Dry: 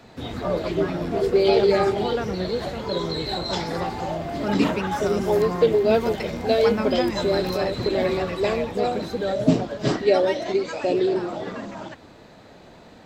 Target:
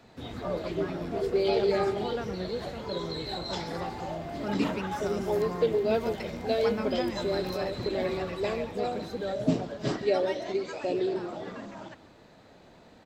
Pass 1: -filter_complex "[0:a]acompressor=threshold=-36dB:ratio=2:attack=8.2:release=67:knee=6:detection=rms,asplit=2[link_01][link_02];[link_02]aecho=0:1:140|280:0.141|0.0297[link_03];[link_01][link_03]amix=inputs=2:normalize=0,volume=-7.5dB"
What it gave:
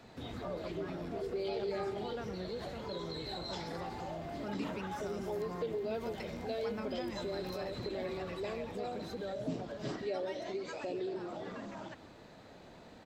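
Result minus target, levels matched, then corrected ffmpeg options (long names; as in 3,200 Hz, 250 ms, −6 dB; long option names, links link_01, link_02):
downward compressor: peak gain reduction +14 dB
-filter_complex "[0:a]asplit=2[link_01][link_02];[link_02]aecho=0:1:140|280:0.141|0.0297[link_03];[link_01][link_03]amix=inputs=2:normalize=0,volume=-7.5dB"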